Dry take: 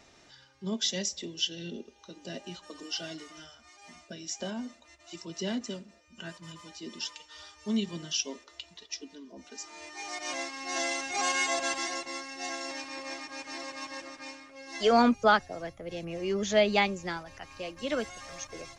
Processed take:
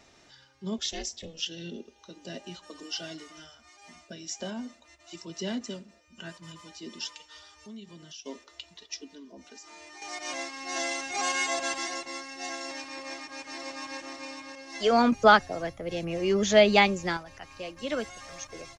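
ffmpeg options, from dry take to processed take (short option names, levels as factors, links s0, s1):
-filter_complex "[0:a]asettb=1/sr,asplit=3[s0][s1][s2];[s0]atrim=end=0.784[s3];[s1]atrim=start=0.78:end=1.46,asetpts=PTS-STARTPTS,afade=t=in:d=0.004:c=qsin,afade=t=out:st=0.676:d=0.004:c=qsin,aeval=exprs='val(0)*sin(2*PI*160*n/s)':c=same[s4];[s2]atrim=start=1.456[s5];[s3][s4]acrossfade=d=0.004:c1=hsin:c2=qsin[s6];[s6][s5]acrossfade=d=0.004:c1=qsin:c2=hsin,asettb=1/sr,asplit=3[s7][s8][s9];[s7]atrim=end=7.384[s10];[s8]atrim=start=7.38:end=8.26,asetpts=PTS-STARTPTS,afade=t=in:d=0.004:c=qsin,afade=t=out:st=0.876:d=0.004:c=qsin,acompressor=threshold=0.00355:ratio=2.5:attack=3.2:release=140:knee=1:detection=peak[s11];[s9]atrim=start=8.256[s12];[s10][s11]acrossfade=d=0.004:c1=hsin:c2=qsin[s13];[s13][s12]acrossfade=d=0.004:c1=qsin:c2=hsin,asettb=1/sr,asplit=3[s14][s15][s16];[s14]atrim=end=9.354[s17];[s15]atrim=start=9.35:end=10.02,asetpts=PTS-STARTPTS,afade=t=in:d=0.004:c=qsin,afade=t=out:st=0.666:d=0.004:c=qsin,acompressor=threshold=0.00631:ratio=6:attack=3.2:release=140:knee=1:detection=peak[s18];[s16]atrim=start=10.016[s19];[s17][s18]acrossfade=d=0.004:c1=hsin:c2=qsin[s20];[s20][s19]acrossfade=d=0.004:c1=qsin:c2=hsin,asplit=2[s21][s22];[s22]afade=t=in:st=13.1:d=0.01,afade=t=out:st=14:d=0.01,aecho=0:1:550|1100|1650|2200:0.562341|0.168702|0.0506107|0.0151832[s23];[s21][s23]amix=inputs=2:normalize=0,asettb=1/sr,asplit=3[s24][s25][s26];[s24]atrim=end=15.124[s27];[s25]atrim=start=15.12:end=17.17,asetpts=PTS-STARTPTS,afade=t=in:d=0.004:c=qsin,afade=t=out:st=2.046:d=0.004:c=qsin,acontrast=32[s28];[s26]atrim=start=17.166[s29];[s27][s28]acrossfade=d=0.004:c1=hsin:c2=qsin[s30];[s30][s29]acrossfade=d=0.004:c1=qsin:c2=hsin"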